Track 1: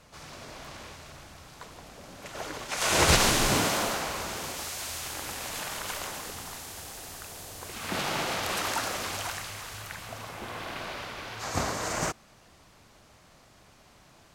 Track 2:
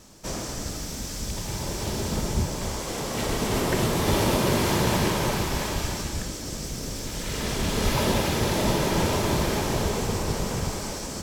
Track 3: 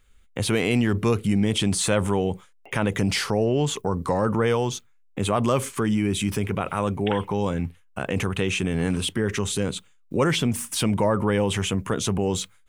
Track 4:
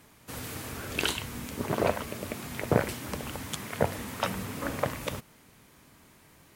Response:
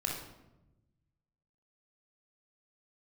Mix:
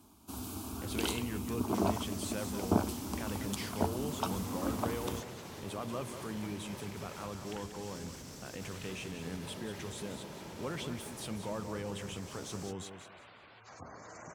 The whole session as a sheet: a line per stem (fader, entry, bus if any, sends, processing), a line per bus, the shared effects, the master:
-16.5 dB, 2.25 s, bus A, no send, no echo send, spectral gate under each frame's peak -15 dB strong
-10.5 dB, 1.50 s, bus A, no send, no echo send, none
-18.0 dB, 0.45 s, no bus, no send, echo send -9 dB, none
-3.5 dB, 0.00 s, no bus, no send, no echo send, bass shelf 250 Hz +12 dB; static phaser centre 510 Hz, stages 6
bus A: 0.0 dB, compression 10:1, threshold -43 dBFS, peak gain reduction 14.5 dB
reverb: none
echo: feedback delay 186 ms, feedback 23%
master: high-pass 76 Hz

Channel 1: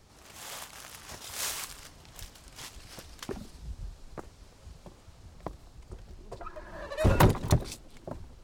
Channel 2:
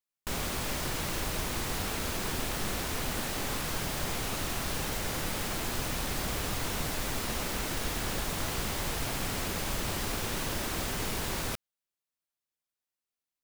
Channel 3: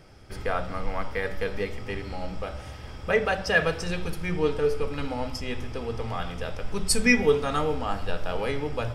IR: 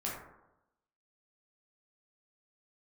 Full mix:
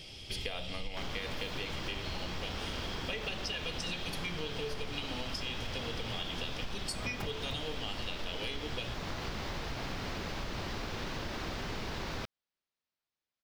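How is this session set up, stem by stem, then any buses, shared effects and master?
-10.0 dB, 0.00 s, no send, self-modulated delay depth 0.91 ms
+2.5 dB, 0.70 s, no send, resonant high shelf 6.8 kHz -11 dB, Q 1.5
-1.0 dB, 0.00 s, no send, resonant high shelf 2.1 kHz +14 dB, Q 3; compression, threshold -21 dBFS, peak gain reduction 17 dB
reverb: none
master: treble shelf 4.5 kHz -8 dB; compression 5:1, threshold -35 dBFS, peak gain reduction 13 dB

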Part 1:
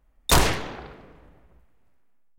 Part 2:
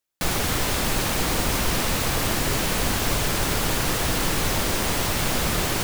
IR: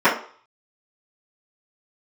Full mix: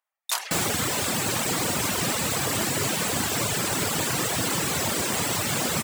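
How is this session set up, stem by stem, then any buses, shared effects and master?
-10.5 dB, 0.00 s, no send, high-pass 730 Hz 24 dB/octave; treble shelf 3.2 kHz +7 dB
+1.0 dB, 0.30 s, no send, peaking EQ 7.8 kHz +7.5 dB 0.28 oct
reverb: none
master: high-pass 100 Hz 24 dB/octave; reverb removal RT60 1.1 s

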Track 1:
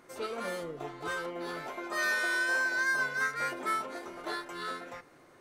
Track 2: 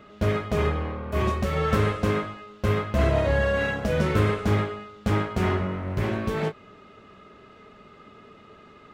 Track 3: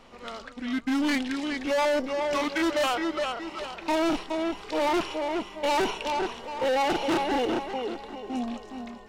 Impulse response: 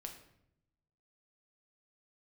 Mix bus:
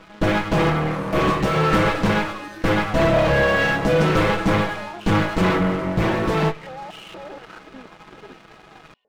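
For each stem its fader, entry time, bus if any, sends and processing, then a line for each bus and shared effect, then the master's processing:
-9.0 dB, 0.50 s, bus A, no send, compression, threshold -38 dBFS, peak gain reduction 11 dB
+1.0 dB, 0.00 s, no bus, send -12.5 dB, comb filter that takes the minimum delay 6.1 ms; treble shelf 9.9 kHz -10 dB
-6.0 dB, 0.00 s, bus A, no send, step-sequenced band-pass 4.2 Hz 270–2900 Hz
bus A: 0.0 dB, peak limiter -36.5 dBFS, peak gain reduction 8.5 dB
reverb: on, RT60 0.75 s, pre-delay 6 ms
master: waveshaping leveller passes 2

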